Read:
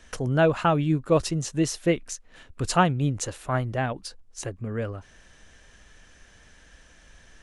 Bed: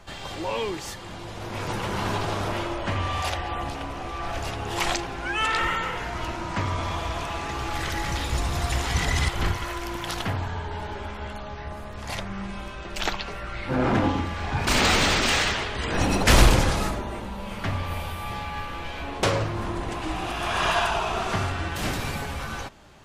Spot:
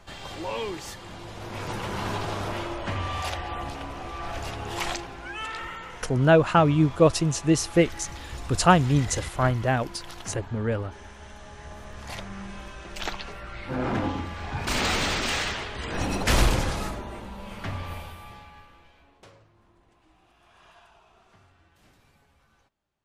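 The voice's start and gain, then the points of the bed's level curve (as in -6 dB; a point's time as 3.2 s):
5.90 s, +3.0 dB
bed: 4.71 s -3 dB
5.65 s -11.5 dB
11.27 s -11.5 dB
11.89 s -5 dB
17.9 s -5 dB
19.43 s -32 dB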